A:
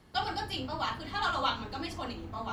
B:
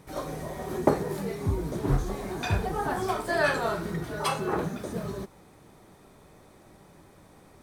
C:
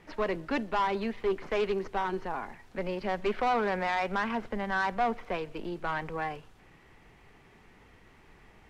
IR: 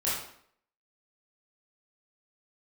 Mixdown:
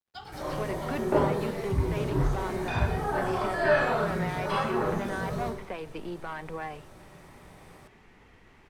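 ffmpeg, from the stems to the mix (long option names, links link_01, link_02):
-filter_complex "[0:a]flanger=delay=9.4:depth=4.1:regen=65:speed=1.5:shape=sinusoidal,aeval=exprs='sgn(val(0))*max(abs(val(0))-0.00133,0)':channel_layout=same,volume=-5.5dB[link_01];[1:a]acrossover=split=3500[link_02][link_03];[link_03]acompressor=threshold=-49dB:ratio=4:attack=1:release=60[link_04];[link_02][link_04]amix=inputs=2:normalize=0,adelay=250,volume=-1.5dB,asplit=2[link_05][link_06];[link_06]volume=-7dB[link_07];[2:a]alimiter=level_in=4.5dB:limit=-24dB:level=0:latency=1:release=170,volume=-4.5dB,adelay=400,volume=1dB[link_08];[link_01][link_05]amix=inputs=2:normalize=0,acrossover=split=310[link_09][link_10];[link_10]acompressor=threshold=-38dB:ratio=6[link_11];[link_09][link_11]amix=inputs=2:normalize=0,alimiter=level_in=5.5dB:limit=-24dB:level=0:latency=1,volume=-5.5dB,volume=0dB[link_12];[3:a]atrim=start_sample=2205[link_13];[link_07][link_13]afir=irnorm=-1:irlink=0[link_14];[link_08][link_12][link_14]amix=inputs=3:normalize=0,highshelf=frequency=11000:gain=-4"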